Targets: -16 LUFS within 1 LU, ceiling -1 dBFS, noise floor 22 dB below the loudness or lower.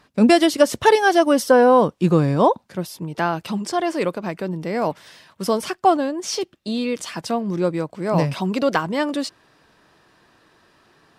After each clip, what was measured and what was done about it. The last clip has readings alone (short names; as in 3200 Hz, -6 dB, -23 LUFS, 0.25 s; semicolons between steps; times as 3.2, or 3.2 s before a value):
loudness -20.0 LUFS; peak -1.5 dBFS; loudness target -16.0 LUFS
-> gain +4 dB; limiter -1 dBFS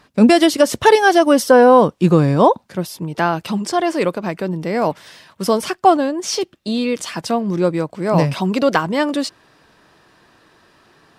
loudness -16.0 LUFS; peak -1.0 dBFS; noise floor -56 dBFS